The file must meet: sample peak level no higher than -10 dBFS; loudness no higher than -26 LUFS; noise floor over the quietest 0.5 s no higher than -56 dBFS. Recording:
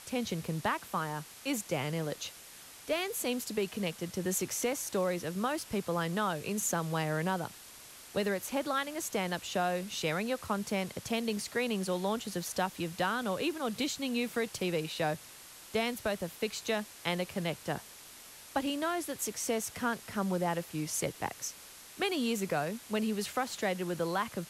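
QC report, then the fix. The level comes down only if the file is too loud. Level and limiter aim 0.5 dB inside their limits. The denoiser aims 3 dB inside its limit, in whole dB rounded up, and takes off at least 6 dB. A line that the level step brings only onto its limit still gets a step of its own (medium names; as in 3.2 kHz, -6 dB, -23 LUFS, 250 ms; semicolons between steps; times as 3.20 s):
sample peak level -17.0 dBFS: pass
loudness -34.0 LUFS: pass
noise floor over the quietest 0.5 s -52 dBFS: fail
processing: noise reduction 7 dB, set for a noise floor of -52 dBFS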